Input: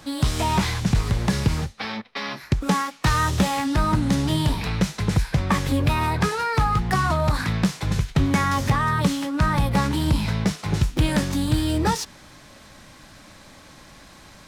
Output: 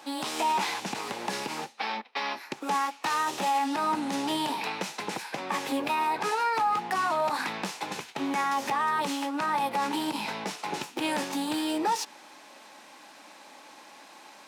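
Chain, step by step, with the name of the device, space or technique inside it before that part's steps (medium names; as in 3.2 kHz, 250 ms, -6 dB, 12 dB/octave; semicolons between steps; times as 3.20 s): laptop speaker (high-pass 270 Hz 24 dB/octave; peaking EQ 850 Hz +10 dB 0.37 oct; peaking EQ 2.6 kHz +5 dB 0.33 oct; peak limiter -15 dBFS, peak gain reduction 9.5 dB); trim -4 dB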